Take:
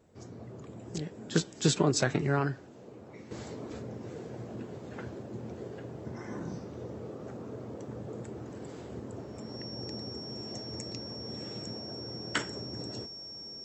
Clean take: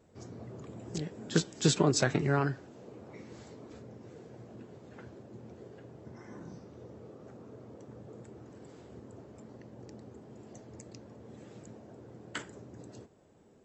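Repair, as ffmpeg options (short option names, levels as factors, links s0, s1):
-af "bandreject=f=5500:w=30,asetnsamples=n=441:p=0,asendcmd='3.31 volume volume -8dB',volume=1"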